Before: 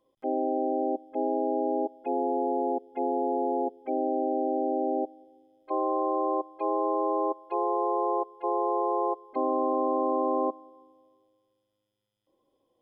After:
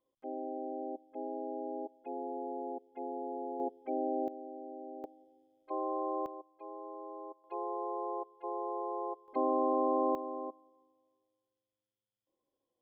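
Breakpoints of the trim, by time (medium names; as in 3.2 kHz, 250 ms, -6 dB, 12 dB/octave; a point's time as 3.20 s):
-12 dB
from 3.60 s -6 dB
from 4.28 s -18 dB
from 5.04 s -8 dB
from 6.26 s -18.5 dB
from 7.44 s -10.5 dB
from 9.28 s -3.5 dB
from 10.15 s -13.5 dB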